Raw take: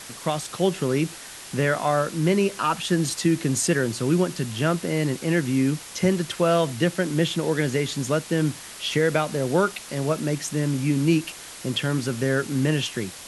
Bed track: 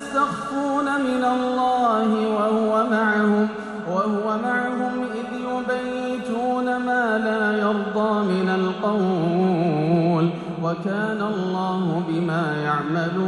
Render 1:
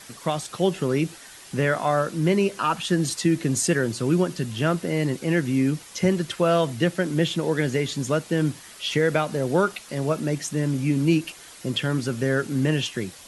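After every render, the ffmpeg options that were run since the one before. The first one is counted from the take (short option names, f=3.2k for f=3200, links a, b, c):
-af "afftdn=nr=7:nf=-41"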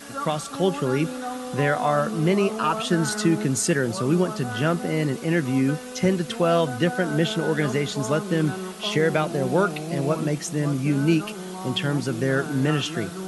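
-filter_complex "[1:a]volume=-11dB[a];[0:a][a]amix=inputs=2:normalize=0"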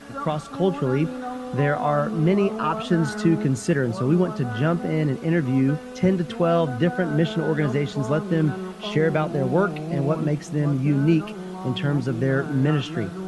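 -af "lowpass=f=2k:p=1,lowshelf=f=99:g=9"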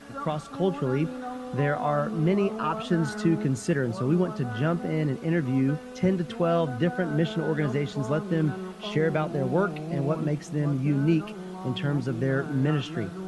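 -af "volume=-4dB"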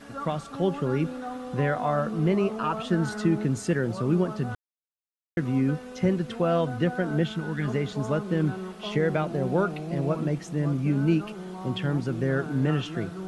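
-filter_complex "[0:a]asettb=1/sr,asplit=3[a][b][c];[a]atrim=end=7.234[d];[b]atrim=start=7.23:end=7.68,asetpts=PTS-STARTPTS,afade=t=in:d=0.004:c=qsin,afade=t=out:st=0.446:d=0.004:c=qsin,equalizer=f=540:w=1.3:g=-12.5[e];[c]atrim=start=7.676[f];[d][e]acrossfade=d=0.004:c1=hsin:c2=qsin[g];[g][f]acrossfade=d=0.004:c1=qsin:c2=hsin,asplit=3[h][i][j];[h]atrim=end=4.55,asetpts=PTS-STARTPTS,afade=t=out:st=4.546:d=0.004:c=hsin[k];[i]atrim=start=4.55:end=5.37,asetpts=PTS-STARTPTS,volume=0[l];[j]atrim=start=5.37,asetpts=PTS-STARTPTS,afade=t=in:d=0.004:c=hsin[m];[k][l][m]concat=n=3:v=0:a=1"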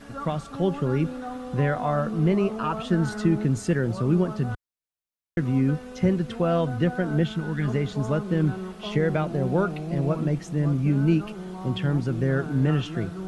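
-af "lowshelf=f=100:g=10.5"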